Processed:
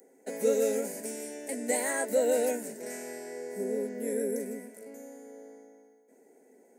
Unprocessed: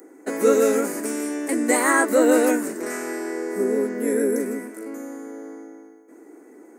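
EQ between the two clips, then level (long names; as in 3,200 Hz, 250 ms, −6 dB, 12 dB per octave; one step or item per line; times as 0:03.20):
phaser with its sweep stopped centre 320 Hz, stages 6
−7.0 dB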